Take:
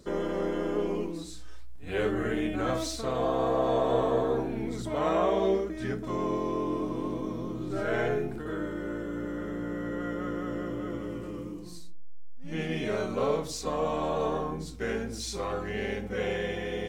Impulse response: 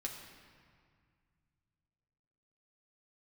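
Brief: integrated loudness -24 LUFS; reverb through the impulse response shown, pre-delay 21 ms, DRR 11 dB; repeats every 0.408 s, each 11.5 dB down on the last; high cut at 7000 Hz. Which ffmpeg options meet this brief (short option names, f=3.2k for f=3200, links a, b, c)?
-filter_complex "[0:a]lowpass=7k,aecho=1:1:408|816|1224:0.266|0.0718|0.0194,asplit=2[a][b];[1:a]atrim=start_sample=2205,adelay=21[c];[b][c]afir=irnorm=-1:irlink=0,volume=-10dB[d];[a][d]amix=inputs=2:normalize=0,volume=6dB"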